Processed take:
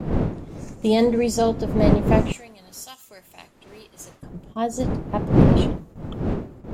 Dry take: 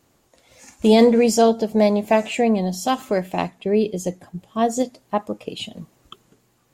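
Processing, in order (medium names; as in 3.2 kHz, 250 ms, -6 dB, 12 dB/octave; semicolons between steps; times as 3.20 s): wind noise 270 Hz -18 dBFS; gate with hold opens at -29 dBFS; 2.32–4.23 s: pre-emphasis filter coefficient 0.97; trim -5 dB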